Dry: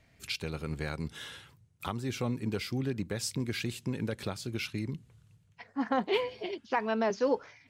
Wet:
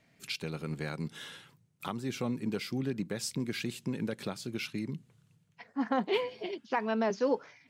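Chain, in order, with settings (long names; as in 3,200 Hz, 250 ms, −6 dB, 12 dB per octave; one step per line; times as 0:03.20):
low shelf with overshoot 110 Hz −12.5 dB, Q 1.5
level −1.5 dB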